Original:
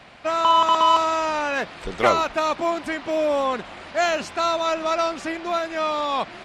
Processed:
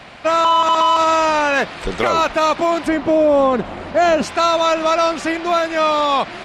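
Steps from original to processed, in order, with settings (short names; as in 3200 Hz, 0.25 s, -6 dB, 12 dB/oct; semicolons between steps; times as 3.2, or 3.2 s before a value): 2.88–4.23 tilt shelf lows +7 dB; limiter -15 dBFS, peak gain reduction 10 dB; gain +8 dB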